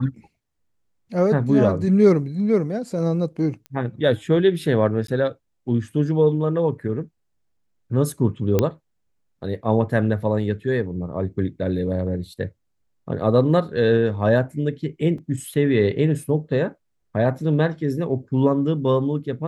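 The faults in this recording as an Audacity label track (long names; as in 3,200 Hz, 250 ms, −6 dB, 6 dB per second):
3.660000	3.660000	click −23 dBFS
5.070000	5.080000	drop-out 13 ms
8.590000	8.590000	click −6 dBFS
15.180000	15.180000	drop-out 3.8 ms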